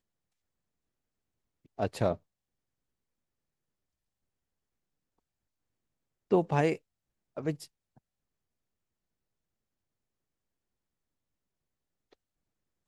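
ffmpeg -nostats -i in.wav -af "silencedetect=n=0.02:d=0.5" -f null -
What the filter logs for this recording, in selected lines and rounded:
silence_start: 0.00
silence_end: 1.79 | silence_duration: 1.79
silence_start: 2.14
silence_end: 6.32 | silence_duration: 4.18
silence_start: 6.75
silence_end: 7.37 | silence_duration: 0.62
silence_start: 7.54
silence_end: 12.88 | silence_duration: 5.34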